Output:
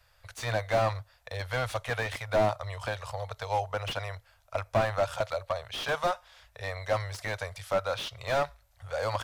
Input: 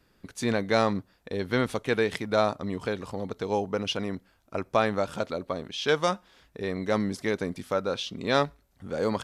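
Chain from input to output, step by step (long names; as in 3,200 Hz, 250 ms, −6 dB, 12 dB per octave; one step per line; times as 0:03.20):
Chebyshev band-stop filter 110–590 Hz, order 3
slew-rate limiting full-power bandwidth 44 Hz
level +3.5 dB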